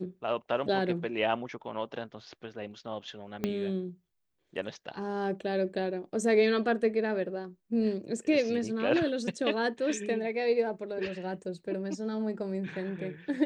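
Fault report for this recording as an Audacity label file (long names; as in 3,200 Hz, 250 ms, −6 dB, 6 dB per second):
3.440000	3.440000	click −17 dBFS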